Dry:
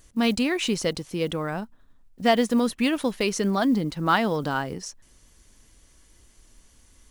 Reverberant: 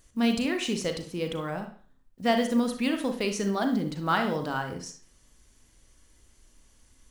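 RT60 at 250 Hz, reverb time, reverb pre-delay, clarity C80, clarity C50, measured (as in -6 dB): 0.45 s, 0.45 s, 35 ms, 13.5 dB, 8.0 dB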